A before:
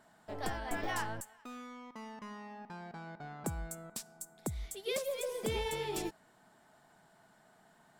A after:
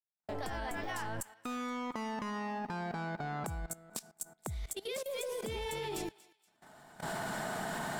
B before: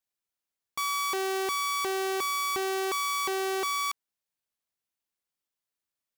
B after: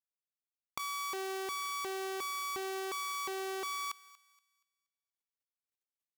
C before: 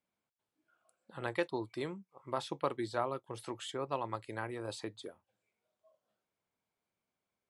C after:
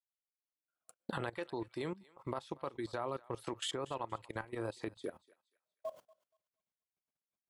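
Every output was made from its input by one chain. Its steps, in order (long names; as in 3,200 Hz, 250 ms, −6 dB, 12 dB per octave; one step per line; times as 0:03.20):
camcorder AGC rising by 26 dB per second
noise gate −47 dBFS, range −36 dB
output level in coarse steps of 19 dB
on a send: feedback echo with a high-pass in the loop 237 ms, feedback 35%, high-pass 1,100 Hz, level −19 dB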